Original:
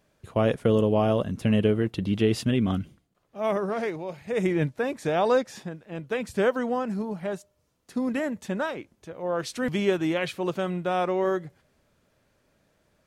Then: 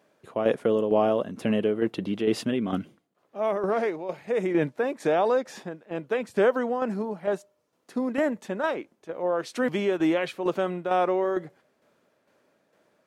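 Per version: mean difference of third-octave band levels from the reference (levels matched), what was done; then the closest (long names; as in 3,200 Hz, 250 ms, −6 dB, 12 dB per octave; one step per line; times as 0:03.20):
3.5 dB: high-pass filter 280 Hz 12 dB per octave
high-shelf EQ 2,200 Hz −8.5 dB
in parallel at +2 dB: brickwall limiter −22 dBFS, peak gain reduction 9 dB
on the sum: shaped tremolo saw down 2.2 Hz, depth 55%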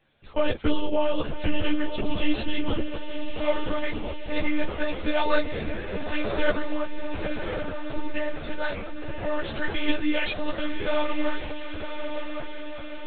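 11.5 dB: high-shelf EQ 2,200 Hz +11.5 dB
on a send: feedback delay with all-pass diffusion 1,079 ms, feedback 61%, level −6 dB
on the sum: one-pitch LPC vocoder at 8 kHz 300 Hz
string-ensemble chorus
level +1.5 dB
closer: first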